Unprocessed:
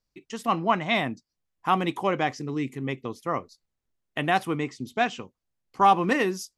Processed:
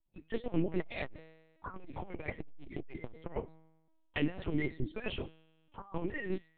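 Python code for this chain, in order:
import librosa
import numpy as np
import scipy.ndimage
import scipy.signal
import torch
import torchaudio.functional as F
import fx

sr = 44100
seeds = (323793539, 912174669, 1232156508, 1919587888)

y = fx.spec_quant(x, sr, step_db=30)
y = scipy.signal.sosfilt(scipy.signal.butter(2, 3000.0, 'lowpass', fs=sr, output='sos'), y)
y = fx.over_compress(y, sr, threshold_db=-30.0, ratio=-0.5)
y = fx.env_phaser(y, sr, low_hz=300.0, high_hz=1300.0, full_db=-29.0)
y = fx.comb_fb(y, sr, f0_hz=160.0, decay_s=1.1, harmonics='all', damping=0.0, mix_pct=60)
y = fx.lpc_vocoder(y, sr, seeds[0], excitation='pitch_kept', order=8)
y = fx.transformer_sat(y, sr, knee_hz=190.0, at=(0.8, 3.36))
y = y * librosa.db_to_amplitude(6.0)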